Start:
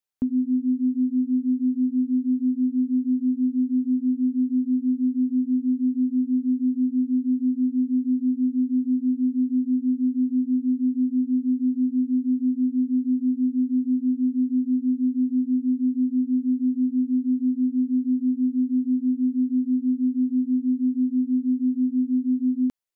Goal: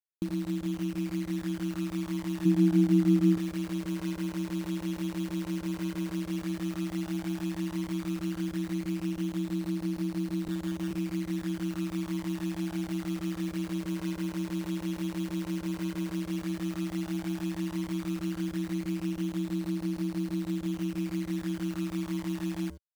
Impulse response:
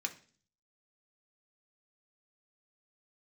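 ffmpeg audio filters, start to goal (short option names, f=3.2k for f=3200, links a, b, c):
-filter_complex "[0:a]aecho=1:1:76:0.168,asettb=1/sr,asplit=3[a][b][c];[a]atrim=end=10.484[d];[b]atrim=start=10.48:end=10.91,asetpts=PTS-STARTPTS,afade=t=in:d=0.004:c=qsin,afade=t=out:st=0.426:d=0.004:c=qsin,acrossover=split=130|320[e][f][g];[e]acompressor=threshold=-59dB:ratio=4[h];[f]acompressor=threshold=-23dB:ratio=4[i];[g]acompressor=threshold=-41dB:ratio=4[j];[h][i][j]amix=inputs=3:normalize=0[k];[c]atrim=start=10.906[l];[d][k]acrossfade=d=0.004:c1=hsin:c2=qsin[m];[m][l]acrossfade=d=0.004:c1=qsin:c2=hsin,acrusher=bits=6:dc=4:mix=0:aa=0.000001,flanger=delay=0.2:depth=1.9:regen=67:speed=0.1:shape=sinusoidal,acompressor=threshold=-26dB:ratio=6,asettb=1/sr,asplit=3[n][o][p];[n]atrim=end=2.454[q];[o]atrim=start=2.45:end=3.38,asetpts=PTS-STARTPTS,afade=t=in:d=0.004:c=qsin,afade=t=out:st=0.926:d=0.004:c=qsin,equalizer=f=240:t=o:w=0.43:g=12[r];[p]atrim=start=3.376[s];[q][r]acrossfade=d=0.004:c1=hsin:c2=qsin[t];[t][s]acrossfade=d=0.004:c1=qsin:c2=hsin,aeval=exprs='val(0)*sin(2*PI*73*n/s)':c=same"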